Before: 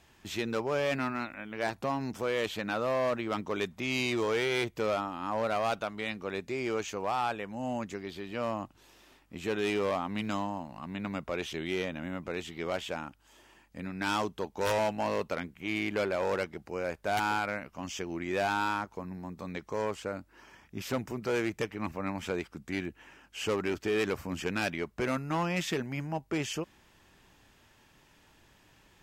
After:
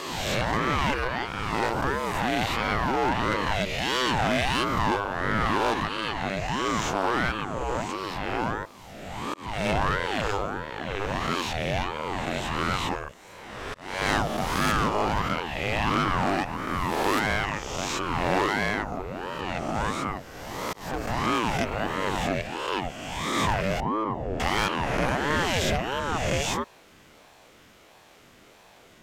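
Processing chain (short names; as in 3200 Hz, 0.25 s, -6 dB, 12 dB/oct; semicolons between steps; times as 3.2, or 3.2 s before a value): spectral swells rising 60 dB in 1.65 s; 23.8–24.4 running mean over 46 samples; in parallel at -3 dB: soft clip -28 dBFS, distortion -11 dB; on the sum: auto swell 0.36 s; ring modulator with a swept carrier 480 Hz, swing 60%, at 1.5 Hz; gain +3 dB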